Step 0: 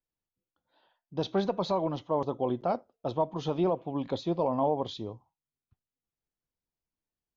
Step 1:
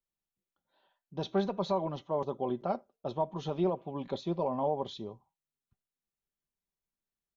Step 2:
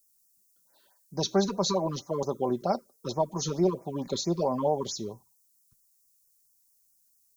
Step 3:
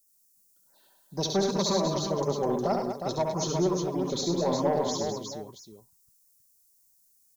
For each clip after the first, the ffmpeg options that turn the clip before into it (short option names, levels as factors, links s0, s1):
-af "bandreject=f=4800:w=12,aecho=1:1:5.1:0.41,volume=0.631"
-filter_complex "[0:a]acrossover=split=400[s0][s1];[s1]aexciter=amount=12.6:drive=2.9:freq=4700[s2];[s0][s2]amix=inputs=2:normalize=0,afftfilt=real='re*(1-between(b*sr/1024,640*pow(3500/640,0.5+0.5*sin(2*PI*4.5*pts/sr))/1.41,640*pow(3500/640,0.5+0.5*sin(2*PI*4.5*pts/sr))*1.41))':imag='im*(1-between(b*sr/1024,640*pow(3500/640,0.5+0.5*sin(2*PI*4.5*pts/sr))/1.41,640*pow(3500/640,0.5+0.5*sin(2*PI*4.5*pts/sr))*1.41))':win_size=1024:overlap=0.75,volume=1.78"
-af "asoftclip=type=tanh:threshold=0.126,aecho=1:1:69|102|204|360|677:0.531|0.376|0.376|0.531|0.2"